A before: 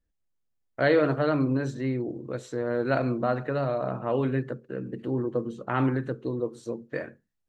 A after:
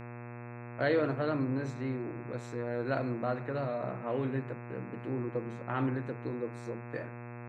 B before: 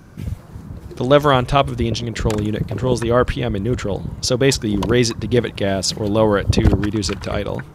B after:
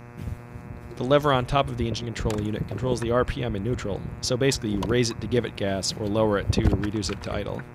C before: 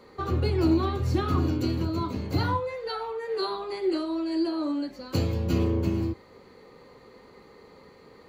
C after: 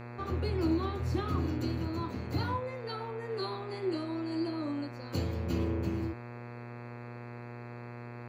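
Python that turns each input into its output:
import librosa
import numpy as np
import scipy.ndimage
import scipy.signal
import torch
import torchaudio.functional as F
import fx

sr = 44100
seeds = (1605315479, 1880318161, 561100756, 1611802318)

y = fx.dmg_buzz(x, sr, base_hz=120.0, harmonics=22, level_db=-37.0, tilt_db=-5, odd_only=False)
y = y * librosa.db_to_amplitude(-7.0)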